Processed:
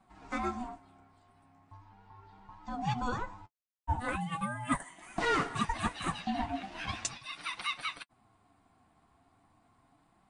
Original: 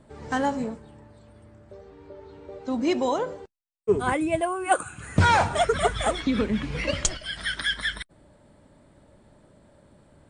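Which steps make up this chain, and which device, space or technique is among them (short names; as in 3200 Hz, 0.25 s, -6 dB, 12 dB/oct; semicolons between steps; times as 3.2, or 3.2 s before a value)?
Chebyshev high-pass 200 Hz, order 3; alien voice (ring modulator 490 Hz; flange 0.39 Hz, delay 5.1 ms, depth 8 ms, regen -29%); bell 7900 Hz -2 dB; gain -2.5 dB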